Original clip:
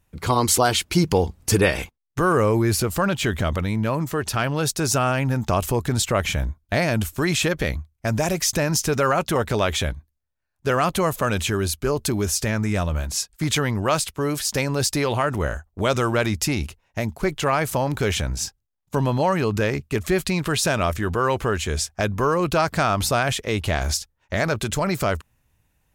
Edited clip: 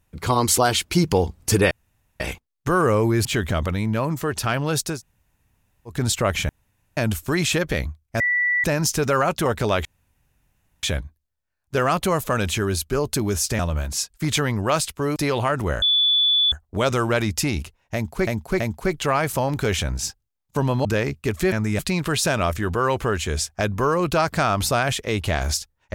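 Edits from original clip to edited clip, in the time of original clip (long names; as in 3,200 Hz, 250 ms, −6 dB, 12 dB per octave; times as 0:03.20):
0:01.71: splice in room tone 0.49 s
0:02.76–0:03.15: remove
0:04.84–0:05.83: fill with room tone, crossfade 0.16 s
0:06.39–0:06.87: fill with room tone
0:08.10–0:08.54: beep over 1,960 Hz −17.5 dBFS
0:09.75: splice in room tone 0.98 s
0:12.51–0:12.78: move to 0:20.19
0:14.35–0:14.90: remove
0:15.56: insert tone 3,460 Hz −15 dBFS 0.70 s
0:16.98–0:17.31: repeat, 3 plays
0:19.23–0:19.52: remove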